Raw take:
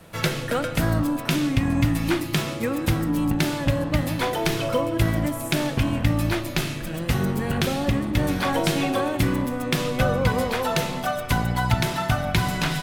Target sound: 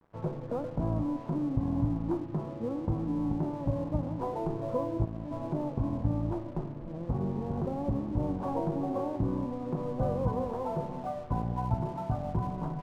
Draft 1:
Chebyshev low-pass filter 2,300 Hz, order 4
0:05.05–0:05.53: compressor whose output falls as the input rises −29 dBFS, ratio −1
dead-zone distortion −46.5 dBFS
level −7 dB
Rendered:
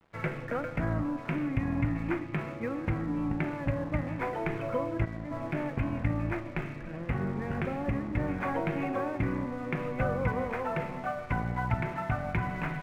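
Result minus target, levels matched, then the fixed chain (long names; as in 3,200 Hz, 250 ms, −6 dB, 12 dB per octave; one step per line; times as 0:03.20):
2,000 Hz band +19.5 dB
Chebyshev low-pass filter 1,000 Hz, order 4
0:05.05–0:05.53: compressor whose output falls as the input rises −29 dBFS, ratio −1
dead-zone distortion −46.5 dBFS
level −7 dB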